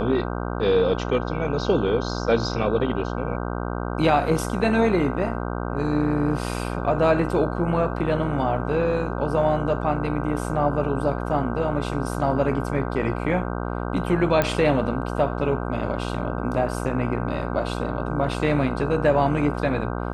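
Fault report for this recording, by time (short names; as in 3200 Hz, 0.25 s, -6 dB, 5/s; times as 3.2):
buzz 60 Hz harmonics 26 -28 dBFS
14.42 pop -7 dBFS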